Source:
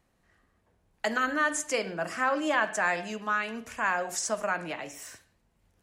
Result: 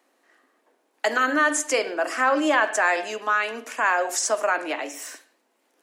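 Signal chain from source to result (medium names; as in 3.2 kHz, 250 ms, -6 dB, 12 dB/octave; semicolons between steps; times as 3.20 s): elliptic high-pass 270 Hz, stop band 50 dB; in parallel at -3 dB: peak limiter -22.5 dBFS, peak gain reduction 7 dB; on the sum: trim +3.5 dB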